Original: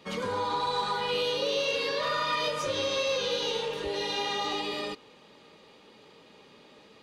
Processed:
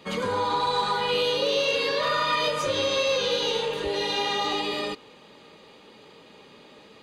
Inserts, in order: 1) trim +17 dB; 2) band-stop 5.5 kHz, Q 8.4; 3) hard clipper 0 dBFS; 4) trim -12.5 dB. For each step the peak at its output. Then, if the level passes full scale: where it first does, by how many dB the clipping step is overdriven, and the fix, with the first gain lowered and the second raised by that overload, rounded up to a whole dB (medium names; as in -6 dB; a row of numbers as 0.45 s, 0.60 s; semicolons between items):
-1.5 dBFS, -2.0 dBFS, -2.0 dBFS, -14.5 dBFS; nothing clips